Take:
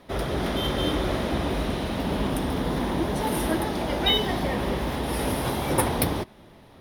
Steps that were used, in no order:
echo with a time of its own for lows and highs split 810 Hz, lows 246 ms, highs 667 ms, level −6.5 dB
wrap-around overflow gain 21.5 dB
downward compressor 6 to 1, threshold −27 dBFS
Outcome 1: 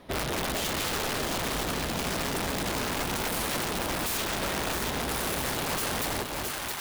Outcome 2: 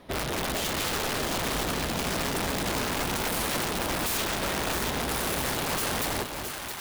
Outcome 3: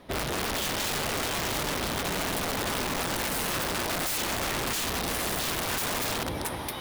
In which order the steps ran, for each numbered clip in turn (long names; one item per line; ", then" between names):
wrap-around overflow, then echo with a time of its own for lows and highs, then downward compressor
wrap-around overflow, then downward compressor, then echo with a time of its own for lows and highs
echo with a time of its own for lows and highs, then wrap-around overflow, then downward compressor